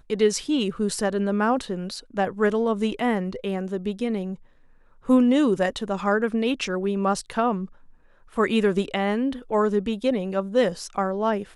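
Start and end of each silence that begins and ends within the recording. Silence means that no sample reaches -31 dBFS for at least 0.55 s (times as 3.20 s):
4.34–5.09 s
7.65–8.37 s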